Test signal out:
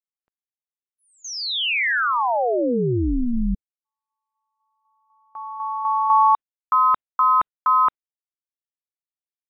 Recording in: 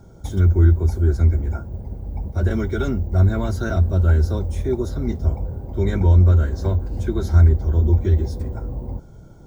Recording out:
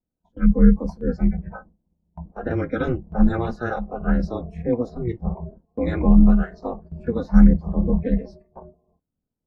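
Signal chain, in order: spectral noise reduction 21 dB; level-controlled noise filter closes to 1.3 kHz, open at -10.5 dBFS; gate with hold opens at -32 dBFS; ring modulator 120 Hz; trim +4 dB

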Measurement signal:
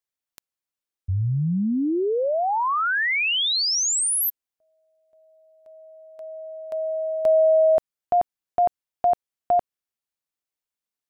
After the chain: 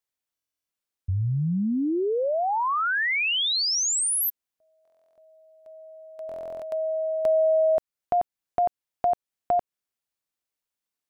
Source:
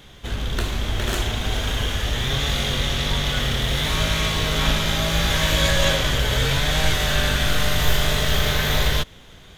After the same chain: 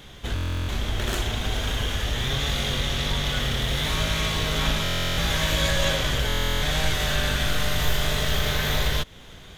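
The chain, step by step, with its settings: in parallel at +3 dB: compression, threshold -28 dBFS; on the sum: buffer glitch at 0.34/4.83/6.27 s, samples 1024, times 14; trim -6.5 dB

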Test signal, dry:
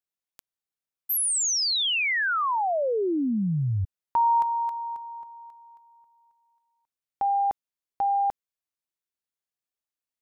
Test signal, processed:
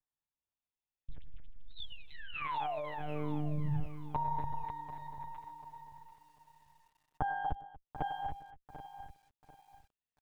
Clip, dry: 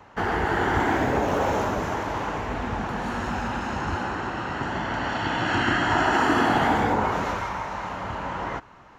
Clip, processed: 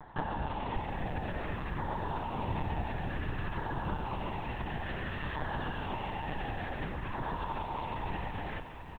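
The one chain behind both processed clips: comb filter that takes the minimum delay 1.1 ms; compression 10:1, threshold -32 dBFS; distance through air 130 m; LFO notch saw down 0.56 Hz 710–2700 Hz; bass shelf 83 Hz +8 dB; on a send: multi-tap echo 106/239/787 ms -17.5/-15/-16 dB; on the sum: monotone LPC vocoder at 8 kHz 150 Hz; bit-crushed delay 741 ms, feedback 35%, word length 10-bit, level -13 dB

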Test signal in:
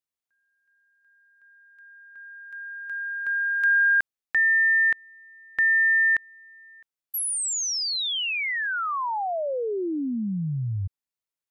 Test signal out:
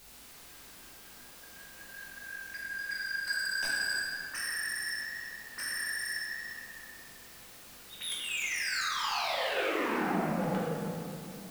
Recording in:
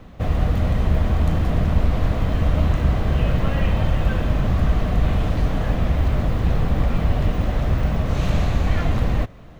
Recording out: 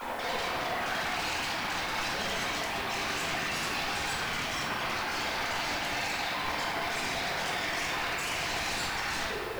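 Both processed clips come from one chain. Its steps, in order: formants replaced by sine waves; reverb removal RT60 1.7 s; low-pass 2 kHz 6 dB/octave; compression, threshold -23 dBFS; peak limiter -23 dBFS; added noise white -57 dBFS; wavefolder -35 dBFS; hum 50 Hz, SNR 26 dB; simulated room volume 120 m³, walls hard, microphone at 0.93 m

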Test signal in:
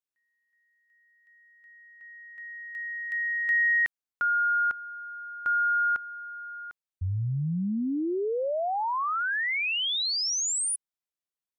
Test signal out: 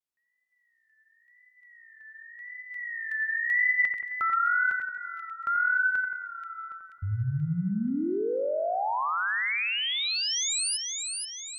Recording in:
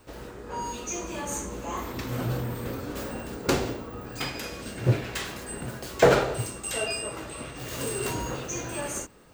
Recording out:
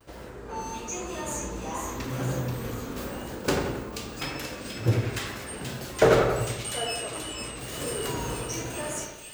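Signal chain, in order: wow and flutter 0.79 Hz 110 cents; two-band feedback delay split 2.3 kHz, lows 88 ms, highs 482 ms, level -5 dB; trim -1.5 dB

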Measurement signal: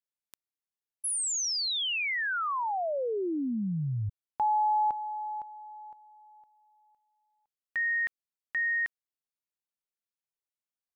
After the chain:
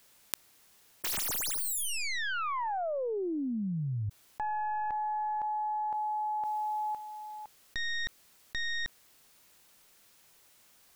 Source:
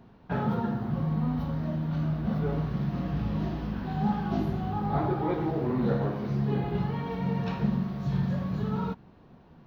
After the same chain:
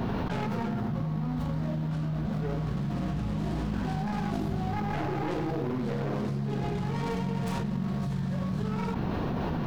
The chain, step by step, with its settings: tracing distortion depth 0.34 ms; level flattener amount 100%; trim -7.5 dB

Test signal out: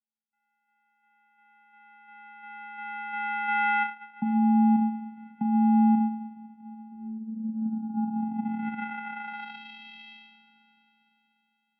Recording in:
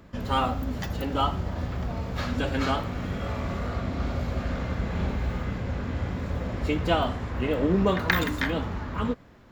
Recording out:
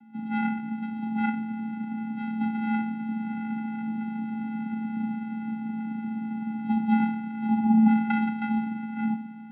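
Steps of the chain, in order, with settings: two-slope reverb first 0.4 s, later 4.2 s, from -18 dB, DRR 1.5 dB; vocoder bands 4, square 301 Hz; mistuned SSB -80 Hz 170–3200 Hz

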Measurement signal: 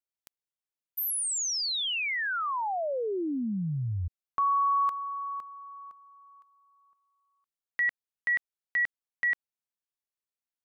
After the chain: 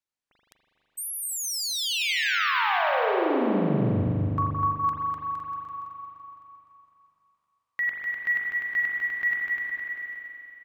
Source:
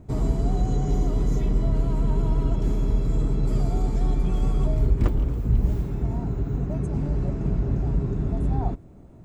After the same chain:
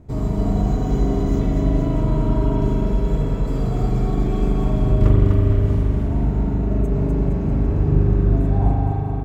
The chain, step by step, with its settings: bouncing-ball echo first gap 250 ms, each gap 0.85×, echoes 5; spring tank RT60 2.8 s, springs 40 ms, chirp 70 ms, DRR -2.5 dB; decimation joined by straight lines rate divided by 2×

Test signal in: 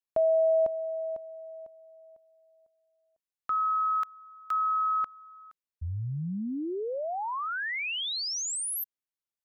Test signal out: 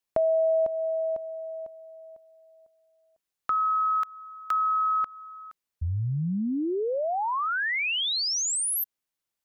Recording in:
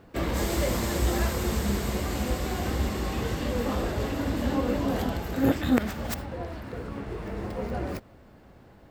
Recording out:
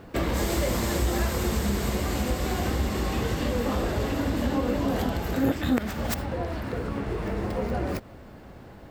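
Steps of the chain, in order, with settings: compression 2:1, threshold -34 dBFS; trim +7 dB

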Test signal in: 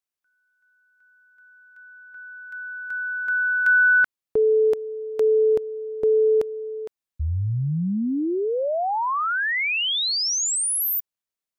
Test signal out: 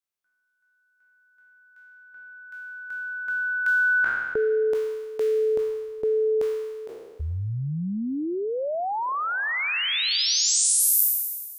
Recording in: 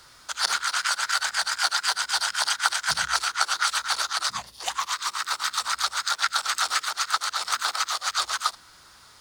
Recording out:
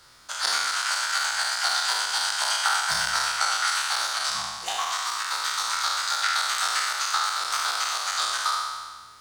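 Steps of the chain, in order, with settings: spectral sustain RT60 1.49 s; trim -4.5 dB

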